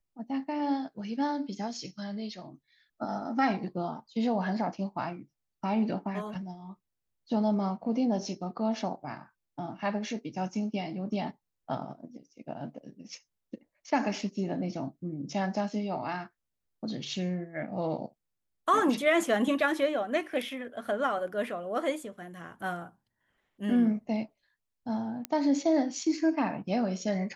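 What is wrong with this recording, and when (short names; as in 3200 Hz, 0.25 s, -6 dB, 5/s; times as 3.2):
25.25 pop -16 dBFS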